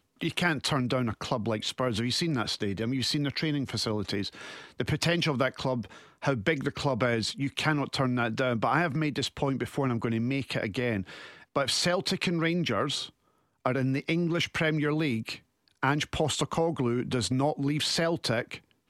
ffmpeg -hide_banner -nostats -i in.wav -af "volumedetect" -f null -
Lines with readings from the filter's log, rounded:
mean_volume: -29.3 dB
max_volume: -12.0 dB